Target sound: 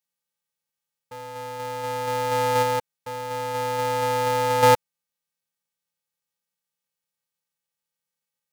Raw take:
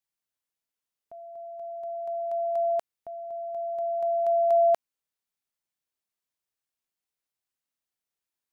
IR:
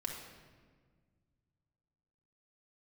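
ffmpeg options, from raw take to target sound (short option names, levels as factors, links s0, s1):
-filter_complex "[0:a]asettb=1/sr,asplit=3[s0][s1][s2];[s0]atrim=end=2.624[s3];[s1]atrim=start=2.62:end=4.63,asetpts=PTS-STARTPTS,afade=t=in:d=0.004:c=qsin,afade=t=out:st=2.006:d=0.004:c=qsin,acompressor=threshold=0.0398:ratio=4[s4];[s2]atrim=start=4.626[s5];[s3][s4]acrossfade=d=0.004:c1=hsin:c2=qsin[s6];[s6][s5]acrossfade=d=0.004:c1=qsin:c2=hsin,afftfilt=real='hypot(re,im)*cos(PI*b)':imag='0':win_size=512:overlap=0.75,aeval=exprs='val(0)*sgn(sin(2*PI*190*n/s))':c=same,volume=2"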